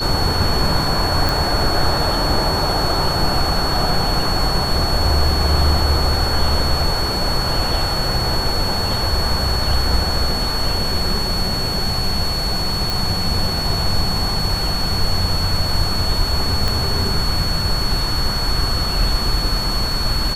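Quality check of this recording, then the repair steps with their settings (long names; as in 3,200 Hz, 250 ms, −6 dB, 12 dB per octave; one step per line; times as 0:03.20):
whistle 4,400 Hz −22 dBFS
0:01.29: click
0:12.90: click
0:16.68: click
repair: click removal
notch filter 4,400 Hz, Q 30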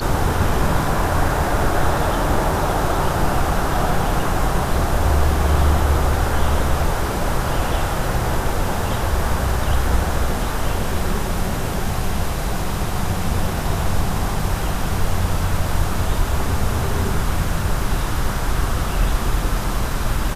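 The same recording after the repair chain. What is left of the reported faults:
0:16.68: click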